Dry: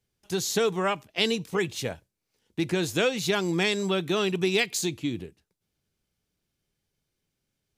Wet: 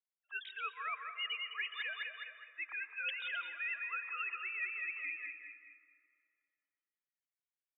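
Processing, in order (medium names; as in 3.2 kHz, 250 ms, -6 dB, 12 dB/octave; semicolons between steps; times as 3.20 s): formants replaced by sine waves; high-pass 1.4 kHz 24 dB/octave; feedback delay 209 ms, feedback 44%, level -8.5 dB; reverse; compression 6:1, threshold -47 dBFS, peak gain reduction 16.5 dB; reverse; spectral noise reduction 21 dB; on a send at -11 dB: reverberation RT60 2.5 s, pre-delay 108 ms; on the sum: trim +9 dB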